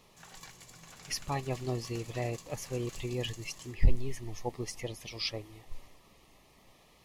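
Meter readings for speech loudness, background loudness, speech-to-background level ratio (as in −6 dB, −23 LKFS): −36.5 LKFS, −50.5 LKFS, 14.0 dB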